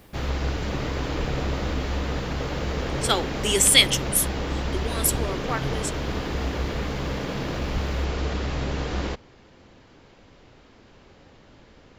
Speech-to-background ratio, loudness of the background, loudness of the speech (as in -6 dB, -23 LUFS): 6.5 dB, -28.5 LUFS, -22.0 LUFS